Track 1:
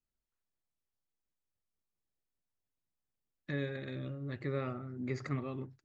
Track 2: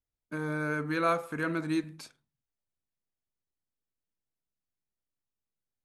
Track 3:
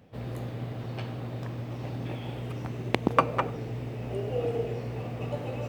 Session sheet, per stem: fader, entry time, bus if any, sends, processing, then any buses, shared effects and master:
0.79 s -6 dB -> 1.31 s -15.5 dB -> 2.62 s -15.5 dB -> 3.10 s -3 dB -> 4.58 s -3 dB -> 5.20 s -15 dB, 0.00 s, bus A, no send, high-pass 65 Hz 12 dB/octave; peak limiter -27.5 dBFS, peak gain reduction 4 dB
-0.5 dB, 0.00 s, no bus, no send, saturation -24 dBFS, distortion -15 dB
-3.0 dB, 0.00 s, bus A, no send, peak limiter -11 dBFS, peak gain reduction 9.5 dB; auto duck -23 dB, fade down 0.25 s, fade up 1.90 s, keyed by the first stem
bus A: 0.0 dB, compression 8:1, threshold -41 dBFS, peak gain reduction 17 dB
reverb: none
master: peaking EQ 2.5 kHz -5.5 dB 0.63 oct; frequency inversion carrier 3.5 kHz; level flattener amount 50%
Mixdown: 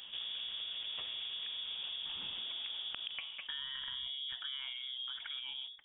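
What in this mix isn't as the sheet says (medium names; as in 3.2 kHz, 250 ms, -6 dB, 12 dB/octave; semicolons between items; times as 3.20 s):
stem 1 -6.0 dB -> +3.0 dB; stem 2: muted; master: missing peaking EQ 2.5 kHz -5.5 dB 0.63 oct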